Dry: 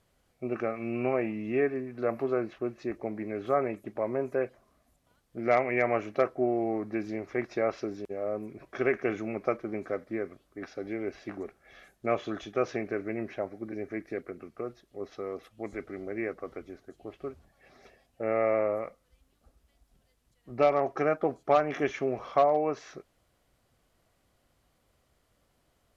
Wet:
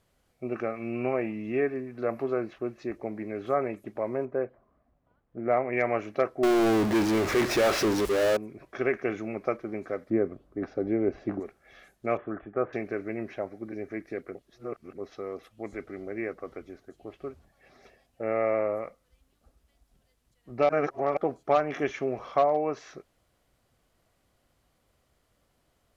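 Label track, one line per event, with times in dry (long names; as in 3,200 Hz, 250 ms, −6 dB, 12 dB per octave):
4.250000	5.730000	low-pass filter 1,400 Hz
6.430000	8.370000	power curve on the samples exponent 0.35
10.100000	11.400000	tilt shelving filter lows +9.5 dB, about 1,400 Hz
12.170000	12.730000	inverse Chebyshev low-pass filter stop band from 4,400 Hz, stop band 50 dB
14.350000	14.980000	reverse
20.690000	21.170000	reverse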